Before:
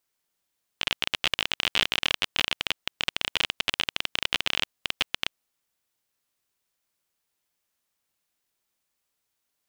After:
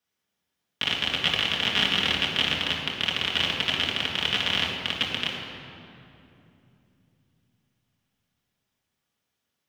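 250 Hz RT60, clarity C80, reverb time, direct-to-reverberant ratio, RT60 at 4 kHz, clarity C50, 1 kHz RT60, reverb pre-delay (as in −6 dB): 4.3 s, 3.0 dB, 2.9 s, −4.5 dB, 1.7 s, 1.5 dB, 2.6 s, 3 ms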